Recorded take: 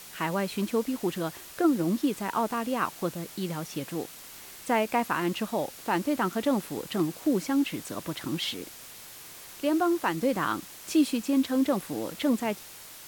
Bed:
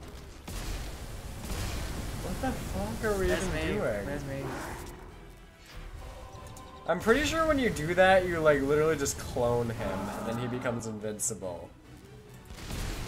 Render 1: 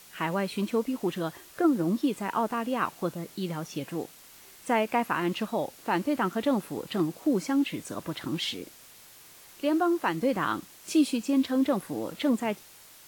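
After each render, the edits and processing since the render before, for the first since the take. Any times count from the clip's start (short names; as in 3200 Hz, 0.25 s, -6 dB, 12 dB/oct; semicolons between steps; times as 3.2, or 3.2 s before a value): noise print and reduce 6 dB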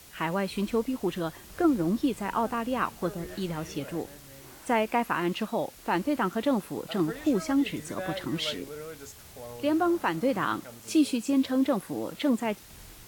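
add bed -15 dB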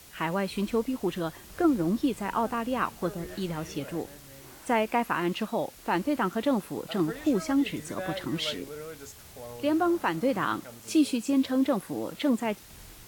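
nothing audible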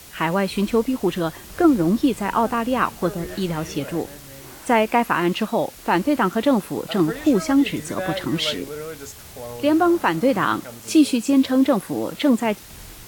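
gain +8 dB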